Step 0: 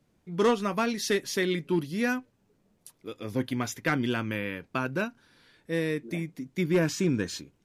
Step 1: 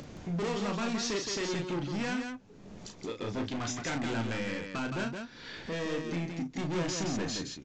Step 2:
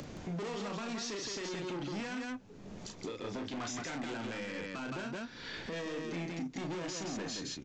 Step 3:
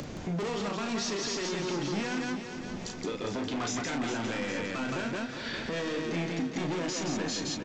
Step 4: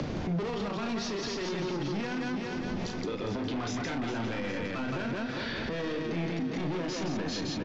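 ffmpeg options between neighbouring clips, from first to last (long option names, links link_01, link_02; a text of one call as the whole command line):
ffmpeg -i in.wav -af "acompressor=mode=upward:threshold=-29dB:ratio=2.5,aresample=16000,asoftclip=type=hard:threshold=-32.5dB,aresample=44100,aecho=1:1:34.99|169.1:0.501|0.562" out.wav
ffmpeg -i in.wav -filter_complex "[0:a]acrossover=split=190|2100[link_01][link_02][link_03];[link_01]acompressor=threshold=-48dB:ratio=6[link_04];[link_04][link_02][link_03]amix=inputs=3:normalize=0,alimiter=level_in=8dB:limit=-24dB:level=0:latency=1:release=41,volume=-8dB,volume=1dB" out.wav
ffmpeg -i in.wav -af "aecho=1:1:406|812|1218|1624|2030|2436|2842:0.355|0.202|0.115|0.0657|0.0375|0.0213|0.0122,volume=6dB" out.wav
ffmpeg -i in.wav -filter_complex "[0:a]lowpass=frequency=5400:width=0.5412,lowpass=frequency=5400:width=1.3066,equalizer=frequency=3700:width=0.35:gain=-3,acrossover=split=110[link_01][link_02];[link_02]alimiter=level_in=8.5dB:limit=-24dB:level=0:latency=1:release=55,volume=-8.5dB[link_03];[link_01][link_03]amix=inputs=2:normalize=0,volume=6.5dB" out.wav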